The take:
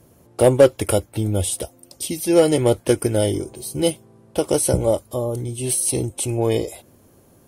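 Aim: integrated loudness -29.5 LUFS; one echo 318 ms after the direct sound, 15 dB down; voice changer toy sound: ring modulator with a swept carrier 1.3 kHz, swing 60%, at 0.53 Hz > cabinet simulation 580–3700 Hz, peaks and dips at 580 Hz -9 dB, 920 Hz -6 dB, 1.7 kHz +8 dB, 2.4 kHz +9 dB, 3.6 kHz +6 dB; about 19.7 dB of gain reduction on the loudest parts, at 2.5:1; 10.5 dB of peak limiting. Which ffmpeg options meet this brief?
-af "acompressor=threshold=0.0112:ratio=2.5,alimiter=level_in=1.78:limit=0.0631:level=0:latency=1,volume=0.562,aecho=1:1:318:0.178,aeval=exprs='val(0)*sin(2*PI*1300*n/s+1300*0.6/0.53*sin(2*PI*0.53*n/s))':c=same,highpass=580,equalizer=f=580:t=q:w=4:g=-9,equalizer=f=920:t=q:w=4:g=-6,equalizer=f=1700:t=q:w=4:g=8,equalizer=f=2400:t=q:w=4:g=9,equalizer=f=3600:t=q:w=4:g=6,lowpass=f=3700:w=0.5412,lowpass=f=3700:w=1.3066,volume=2.24"

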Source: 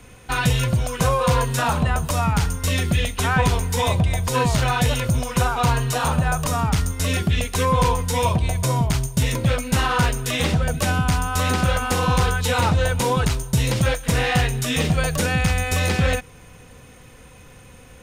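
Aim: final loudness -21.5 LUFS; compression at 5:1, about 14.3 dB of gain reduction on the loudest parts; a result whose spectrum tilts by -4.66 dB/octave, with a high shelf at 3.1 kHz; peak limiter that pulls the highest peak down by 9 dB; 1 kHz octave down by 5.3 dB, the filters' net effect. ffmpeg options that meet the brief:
-af "equalizer=f=1000:t=o:g=-7,highshelf=f=3100:g=3,acompressor=threshold=0.0251:ratio=5,volume=5.31,alimiter=limit=0.251:level=0:latency=1"

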